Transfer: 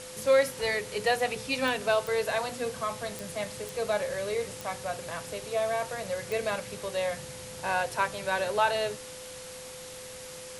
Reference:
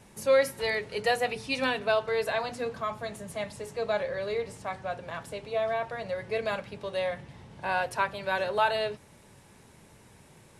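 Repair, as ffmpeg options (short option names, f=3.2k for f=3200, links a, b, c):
-af "adeclick=t=4,bandreject=f=510:w=30,afftdn=nr=12:nf=-43"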